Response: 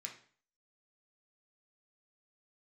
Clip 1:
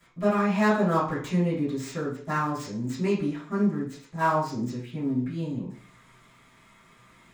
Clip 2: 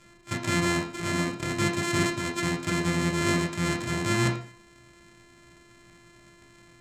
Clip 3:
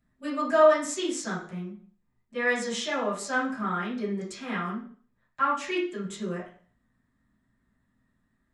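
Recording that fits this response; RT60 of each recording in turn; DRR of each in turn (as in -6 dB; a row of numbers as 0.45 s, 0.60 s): 2; 0.45 s, 0.45 s, 0.45 s; -14.5 dB, 0.0 dB, -9.5 dB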